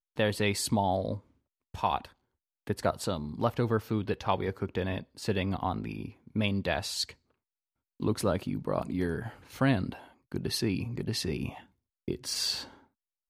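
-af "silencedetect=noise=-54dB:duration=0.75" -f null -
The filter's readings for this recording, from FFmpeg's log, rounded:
silence_start: 7.14
silence_end: 8.00 | silence_duration: 0.86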